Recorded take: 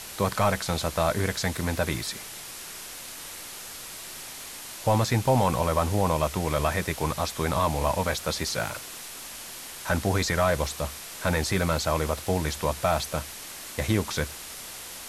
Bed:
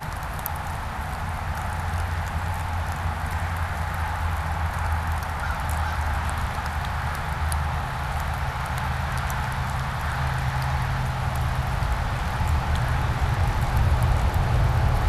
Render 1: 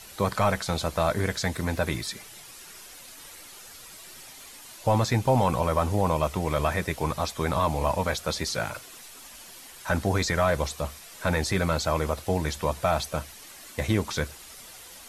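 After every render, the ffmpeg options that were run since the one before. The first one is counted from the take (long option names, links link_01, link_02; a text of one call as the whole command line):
ffmpeg -i in.wav -af "afftdn=noise_reduction=9:noise_floor=-41" out.wav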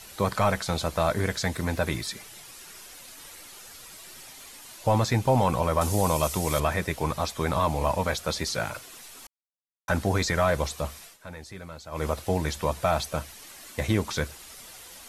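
ffmpeg -i in.wav -filter_complex "[0:a]asettb=1/sr,asplit=3[link_01][link_02][link_03];[link_01]atrim=end=5.814[link_04];[link_02]atrim=start=5.81:end=6.6,asetpts=PTS-STARTPTS,afade=type=in:duration=0.004:curve=qsin,afade=type=out:start_time=0.786:duration=0.004:curve=qsin,bass=frequency=250:gain=0,treble=frequency=4000:gain=13[link_05];[link_03]atrim=start=6.596[link_06];[link_04][link_05]acrossfade=duration=0.004:curve1=hsin:curve2=qsin[link_07];[link_07][link_06]acrossfade=duration=0.004:curve1=qsin:curve2=hsin,asplit=5[link_08][link_09][link_10][link_11][link_12];[link_08]atrim=end=9.27,asetpts=PTS-STARTPTS,afade=type=out:start_time=9.266:duration=0.004:curve=hsin[link_13];[link_09]atrim=start=9.27:end=9.88,asetpts=PTS-STARTPTS,volume=0[link_14];[link_10]atrim=start=9.88:end=11.18,asetpts=PTS-STARTPTS,afade=type=in:duration=0.004:curve=hsin,afade=type=out:start_time=1.16:duration=0.14:silence=0.158489[link_15];[link_11]atrim=start=11.18:end=11.91,asetpts=PTS-STARTPTS,volume=-16dB[link_16];[link_12]atrim=start=11.91,asetpts=PTS-STARTPTS,afade=type=in:duration=0.14:silence=0.158489[link_17];[link_13][link_14][link_15][link_16][link_17]concat=n=5:v=0:a=1" out.wav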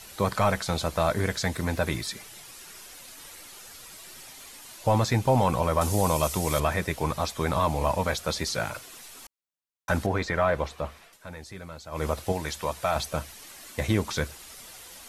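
ffmpeg -i in.wav -filter_complex "[0:a]asettb=1/sr,asplit=3[link_01][link_02][link_03];[link_01]atrim=end=10.064[link_04];[link_02]atrim=start=10.06:end=11.13,asetpts=PTS-STARTPTS,afade=type=in:duration=0.004:curve=qsin,afade=type=out:start_time=1.066:duration=0.004:curve=qsin,bass=frequency=250:gain=-4,treble=frequency=4000:gain=-15[link_05];[link_03]atrim=start=11.126[link_06];[link_04][link_05]acrossfade=duration=0.004:curve1=hsin:curve2=qsin[link_07];[link_07][link_06]acrossfade=duration=0.004:curve1=qsin:curve2=hsin,asettb=1/sr,asplit=3[link_08][link_09][link_10];[link_08]atrim=end=12.324[link_11];[link_09]atrim=start=12.32:end=12.96,asetpts=PTS-STARTPTS,afade=type=in:duration=0.004:curve=qsin,afade=type=out:start_time=0.636:duration=0.004:curve=qsin,lowshelf=frequency=460:gain=-7.5[link_12];[link_10]atrim=start=12.956[link_13];[link_11][link_12]acrossfade=duration=0.004:curve1=hsin:curve2=qsin[link_14];[link_14][link_13]acrossfade=duration=0.004:curve1=qsin:curve2=hsin" out.wav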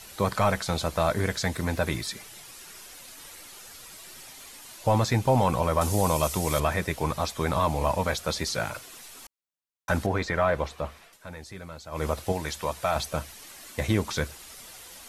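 ffmpeg -i in.wav -af anull out.wav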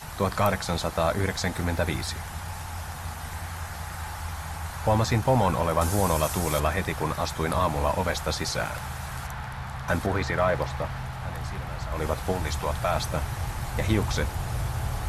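ffmpeg -i in.wav -i bed.wav -filter_complex "[1:a]volume=-8.5dB[link_01];[0:a][link_01]amix=inputs=2:normalize=0" out.wav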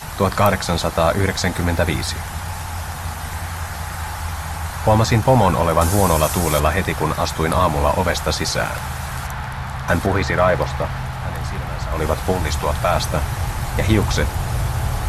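ffmpeg -i in.wav -af "volume=8dB" out.wav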